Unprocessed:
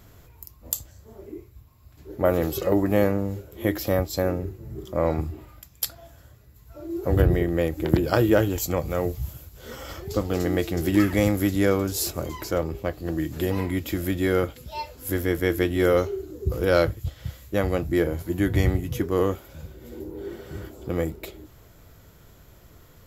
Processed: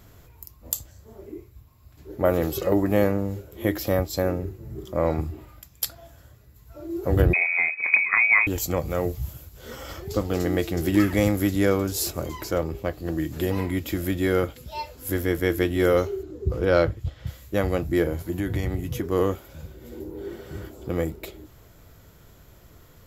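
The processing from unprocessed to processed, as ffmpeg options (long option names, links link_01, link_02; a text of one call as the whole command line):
ffmpeg -i in.wav -filter_complex "[0:a]asettb=1/sr,asplit=3[link_01][link_02][link_03];[link_01]atrim=end=7.334[link_04];[link_02]atrim=start=7.33:end=8.47,asetpts=PTS-STARTPTS,afade=type=in:duration=0.004:curve=qsin,afade=type=out:start_time=1.136:duration=0.004:curve=qsin,lowpass=frequency=2200:width_type=q:width=0.5098,lowpass=frequency=2200:width_type=q:width=0.6013,lowpass=frequency=2200:width_type=q:width=0.9,lowpass=frequency=2200:width_type=q:width=2.563,afreqshift=-2600[link_05];[link_03]atrim=start=8.466[link_06];[link_04][link_05]acrossfade=duration=0.004:curve1=hsin:curve2=qsin[link_07];[link_07][link_06]acrossfade=duration=0.004:curve1=qsin:curve2=hsin,asettb=1/sr,asplit=3[link_08][link_09][link_10];[link_08]atrim=end=16.234[link_11];[link_09]atrim=start=16.23:end=17.27,asetpts=PTS-STARTPTS,afade=type=in:duration=0.004:curve=qsin,afade=type=out:start_time=1.036:duration=0.004:curve=qsin,aemphasis=mode=reproduction:type=50fm[link_12];[link_10]atrim=start=17.266[link_13];[link_11][link_12]acrossfade=duration=0.004:curve1=hsin:curve2=qsin[link_14];[link_14][link_13]acrossfade=duration=0.004:curve1=qsin:curve2=hsin,asettb=1/sr,asplit=3[link_15][link_16][link_17];[link_15]atrim=end=18.264[link_18];[link_16]atrim=start=18.26:end=19.11,asetpts=PTS-STARTPTS,afade=type=in:duration=0.004:curve=qsin,afade=type=out:start_time=0.846:duration=0.004:curve=qsin,acompressor=threshold=-22dB:ratio=4:attack=3.2:release=140:knee=1:detection=peak[link_19];[link_17]atrim=start=19.106[link_20];[link_18][link_19]acrossfade=duration=0.004:curve1=hsin:curve2=qsin[link_21];[link_21][link_20]acrossfade=duration=0.004:curve1=qsin:curve2=hsin" out.wav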